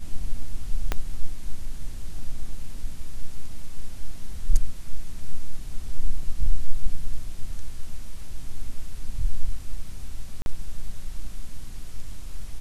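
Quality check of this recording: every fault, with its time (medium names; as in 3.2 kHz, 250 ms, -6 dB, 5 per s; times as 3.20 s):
0.92 s: pop -10 dBFS
10.42–10.46 s: dropout 41 ms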